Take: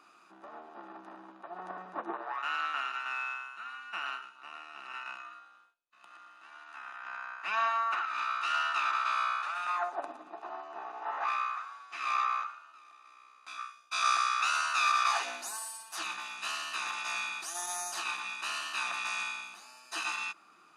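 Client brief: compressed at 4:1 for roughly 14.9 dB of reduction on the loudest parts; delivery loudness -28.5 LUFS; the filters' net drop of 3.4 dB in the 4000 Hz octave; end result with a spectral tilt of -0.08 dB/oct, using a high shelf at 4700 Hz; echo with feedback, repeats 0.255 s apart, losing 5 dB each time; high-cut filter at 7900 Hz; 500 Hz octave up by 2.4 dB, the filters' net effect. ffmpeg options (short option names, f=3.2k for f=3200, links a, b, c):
-af "lowpass=7.9k,equalizer=f=500:t=o:g=4,equalizer=f=4k:t=o:g=-6,highshelf=f=4.7k:g=3.5,acompressor=threshold=-42dB:ratio=4,aecho=1:1:255|510|765|1020|1275|1530|1785:0.562|0.315|0.176|0.0988|0.0553|0.031|0.0173,volume=14dB"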